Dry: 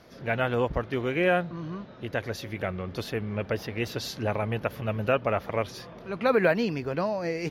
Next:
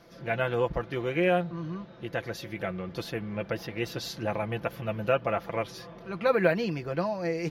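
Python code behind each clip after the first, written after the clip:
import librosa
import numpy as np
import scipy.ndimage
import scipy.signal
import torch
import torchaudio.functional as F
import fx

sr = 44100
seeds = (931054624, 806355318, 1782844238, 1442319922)

y = x + 0.55 * np.pad(x, (int(5.9 * sr / 1000.0), 0))[:len(x)]
y = y * 10.0 ** (-3.0 / 20.0)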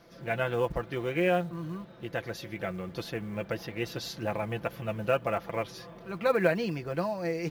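y = fx.quant_float(x, sr, bits=4)
y = y * 10.0 ** (-1.5 / 20.0)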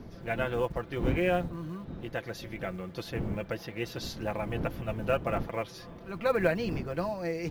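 y = fx.dmg_wind(x, sr, seeds[0], corner_hz=230.0, level_db=-38.0)
y = y * 10.0 ** (-1.5 / 20.0)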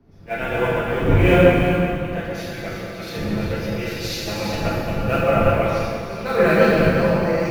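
y = x + 10.0 ** (-6.5 / 20.0) * np.pad(x, (int(351 * sr / 1000.0), 0))[:len(x)]
y = fx.rev_plate(y, sr, seeds[1], rt60_s=3.0, hf_ratio=0.95, predelay_ms=0, drr_db=-7.5)
y = fx.band_widen(y, sr, depth_pct=70)
y = y * 10.0 ** (4.0 / 20.0)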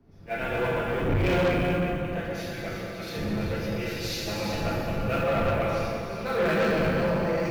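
y = 10.0 ** (-16.0 / 20.0) * np.tanh(x / 10.0 ** (-16.0 / 20.0))
y = y * 10.0 ** (-4.0 / 20.0)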